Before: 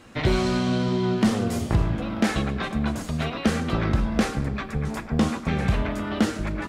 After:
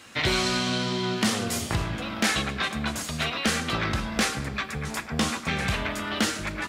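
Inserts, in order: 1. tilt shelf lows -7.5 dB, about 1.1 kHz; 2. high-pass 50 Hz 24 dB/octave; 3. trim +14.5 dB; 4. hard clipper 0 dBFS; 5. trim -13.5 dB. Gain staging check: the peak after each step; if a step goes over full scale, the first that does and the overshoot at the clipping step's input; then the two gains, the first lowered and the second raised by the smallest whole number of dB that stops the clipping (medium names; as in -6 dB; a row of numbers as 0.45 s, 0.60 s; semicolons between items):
-7.0 dBFS, -7.0 dBFS, +7.5 dBFS, 0.0 dBFS, -13.5 dBFS; step 3, 7.5 dB; step 3 +6.5 dB, step 5 -5.5 dB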